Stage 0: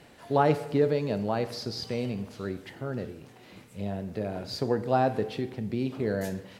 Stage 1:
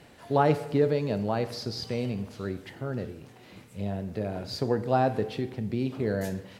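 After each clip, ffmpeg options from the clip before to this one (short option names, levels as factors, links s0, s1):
-af "equalizer=f=89:t=o:w=1.4:g=3"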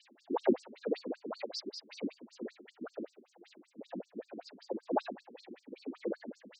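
-af "tremolo=f=2:d=0.56,afftfilt=real='hypot(re,im)*cos(2*PI*random(0))':imag='hypot(re,im)*sin(2*PI*random(1))':win_size=512:overlap=0.75,afftfilt=real='re*between(b*sr/1024,250*pow(6200/250,0.5+0.5*sin(2*PI*5.2*pts/sr))/1.41,250*pow(6200/250,0.5+0.5*sin(2*PI*5.2*pts/sr))*1.41)':imag='im*between(b*sr/1024,250*pow(6200/250,0.5+0.5*sin(2*PI*5.2*pts/sr))/1.41,250*pow(6200/250,0.5+0.5*sin(2*PI*5.2*pts/sr))*1.41)':win_size=1024:overlap=0.75,volume=2.24"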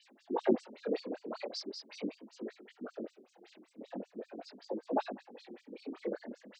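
-af "flanger=delay=18.5:depth=7.1:speed=0.41,volume=1.41"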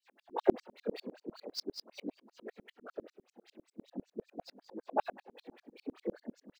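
-filter_complex "[0:a]acrossover=split=2300[s0][s1];[s0]aecho=1:1:549:0.112[s2];[s1]acrusher=bits=3:mode=log:mix=0:aa=0.000001[s3];[s2][s3]amix=inputs=2:normalize=0,aeval=exprs='val(0)*pow(10,-38*if(lt(mod(-10*n/s,1),2*abs(-10)/1000),1-mod(-10*n/s,1)/(2*abs(-10)/1000),(mod(-10*n/s,1)-2*abs(-10)/1000)/(1-2*abs(-10)/1000))/20)':c=same,volume=2.37"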